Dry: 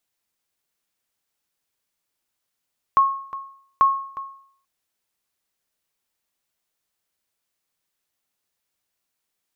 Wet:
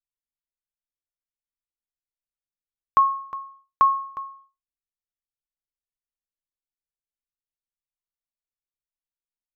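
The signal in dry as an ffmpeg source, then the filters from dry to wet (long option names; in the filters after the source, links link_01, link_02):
-f lavfi -i "aevalsrc='0.355*(sin(2*PI*1090*mod(t,0.84))*exp(-6.91*mod(t,0.84)/0.6)+0.168*sin(2*PI*1090*max(mod(t,0.84)-0.36,0))*exp(-6.91*max(mod(t,0.84)-0.36,0)/0.6))':duration=1.68:sample_rate=44100"
-af "anlmdn=0.00631"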